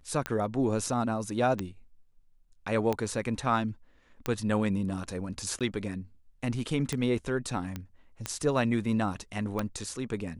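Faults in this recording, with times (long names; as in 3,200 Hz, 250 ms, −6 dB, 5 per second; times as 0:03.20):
scratch tick 45 rpm −15 dBFS
0:05.59–0:05.61: drop-out 17 ms
0:07.76: click −21 dBFS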